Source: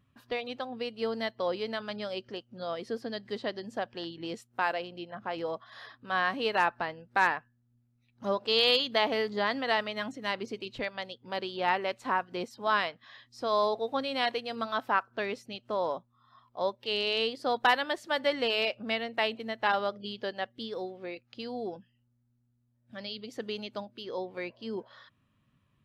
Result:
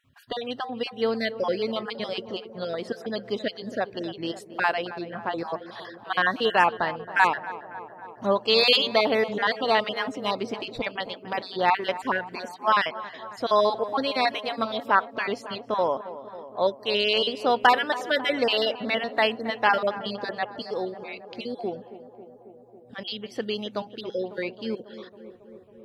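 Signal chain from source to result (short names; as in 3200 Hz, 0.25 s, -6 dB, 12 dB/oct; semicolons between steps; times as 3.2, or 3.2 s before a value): random spectral dropouts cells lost 32%; on a send: tape echo 0.273 s, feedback 84%, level -13 dB, low-pass 1400 Hz; on the sum: gain +7 dB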